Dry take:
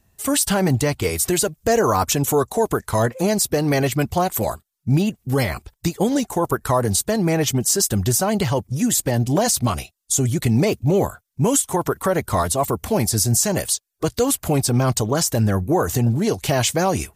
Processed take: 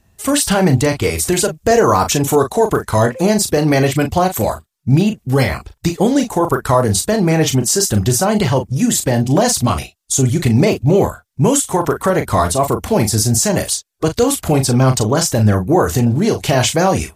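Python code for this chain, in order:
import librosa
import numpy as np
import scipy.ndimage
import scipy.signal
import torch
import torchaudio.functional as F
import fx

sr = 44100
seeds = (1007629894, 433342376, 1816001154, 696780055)

y = fx.high_shelf(x, sr, hz=11000.0, db=-9.5)
y = fx.doubler(y, sr, ms=38.0, db=-8.0)
y = y * 10.0 ** (5.0 / 20.0)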